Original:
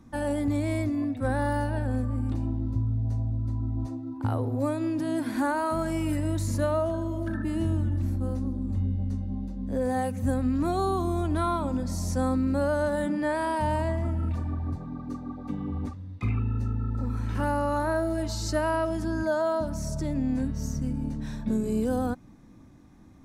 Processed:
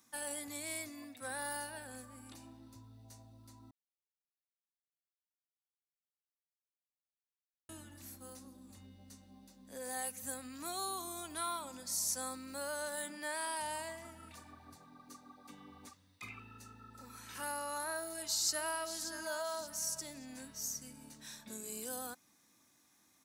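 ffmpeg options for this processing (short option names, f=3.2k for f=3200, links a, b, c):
-filter_complex "[0:a]asplit=2[a][b];[b]afade=t=in:st=18:d=0.01,afade=t=out:st=19.02:d=0.01,aecho=0:1:580|1160|1740|2320:0.298538|0.104488|0.0365709|0.0127998[c];[a][c]amix=inputs=2:normalize=0,asplit=3[d][e][f];[d]atrim=end=3.71,asetpts=PTS-STARTPTS,afade=t=out:st=3.706:d=0.004:c=hsin[g];[e]atrim=start=3.71:end=7.69,asetpts=PTS-STARTPTS,volume=0[h];[f]atrim=start=7.69,asetpts=PTS-STARTPTS,afade=t=in:d=0.004:c=hsin[i];[g][h][i]concat=n=3:v=0:a=1,aderivative,volume=5.5dB"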